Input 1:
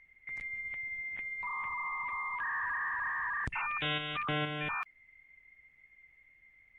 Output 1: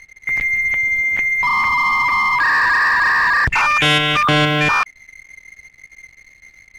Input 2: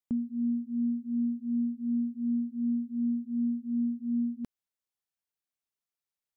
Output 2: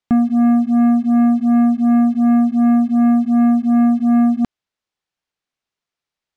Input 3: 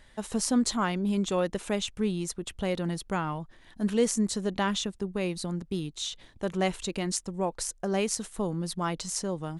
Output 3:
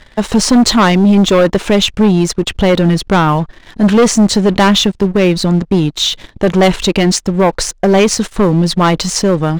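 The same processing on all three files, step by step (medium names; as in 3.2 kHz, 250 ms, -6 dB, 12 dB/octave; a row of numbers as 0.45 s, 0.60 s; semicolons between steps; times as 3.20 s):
low-pass 5 kHz 12 dB/octave; waveshaping leveller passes 2; sine folder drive 3 dB, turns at -12.5 dBFS; trim +8 dB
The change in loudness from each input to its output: +20.5 LU, +17.0 LU, +18.5 LU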